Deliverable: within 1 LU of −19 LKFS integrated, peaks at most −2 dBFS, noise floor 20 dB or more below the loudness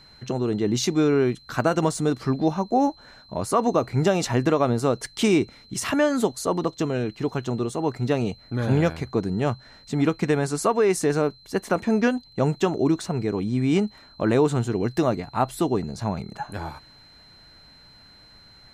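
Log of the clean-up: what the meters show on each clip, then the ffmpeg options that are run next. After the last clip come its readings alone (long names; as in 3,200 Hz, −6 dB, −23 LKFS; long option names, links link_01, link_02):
interfering tone 4,100 Hz; level of the tone −50 dBFS; integrated loudness −24.0 LKFS; sample peak −8.0 dBFS; target loudness −19.0 LKFS
→ -af "bandreject=frequency=4100:width=30"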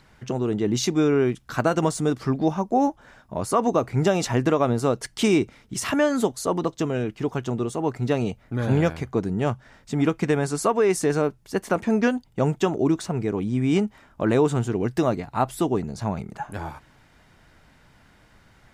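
interfering tone none found; integrated loudness −24.0 LKFS; sample peak −8.0 dBFS; target loudness −19.0 LKFS
→ -af "volume=5dB"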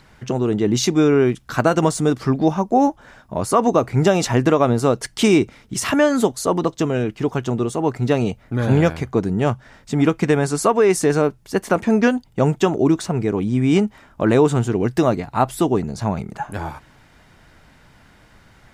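integrated loudness −19.0 LKFS; sample peak −3.0 dBFS; background noise floor −51 dBFS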